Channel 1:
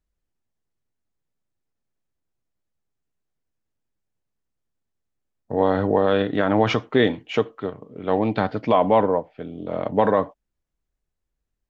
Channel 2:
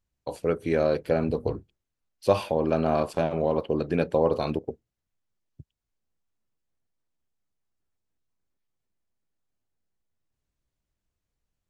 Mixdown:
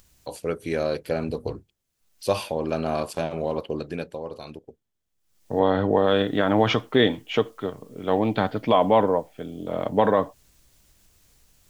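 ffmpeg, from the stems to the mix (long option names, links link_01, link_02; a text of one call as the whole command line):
ffmpeg -i stem1.wav -i stem2.wav -filter_complex "[0:a]equalizer=frequency=3300:width_type=o:width=0.21:gain=7,volume=-1dB[link_01];[1:a]highshelf=frequency=3100:gain=11,acompressor=mode=upward:threshold=-38dB:ratio=2.5,volume=8.5dB,afade=type=out:start_time=3.67:duration=0.52:silence=0.316228,afade=type=in:start_time=5.17:duration=0.45:silence=0.281838[link_02];[link_01][link_02]amix=inputs=2:normalize=0" out.wav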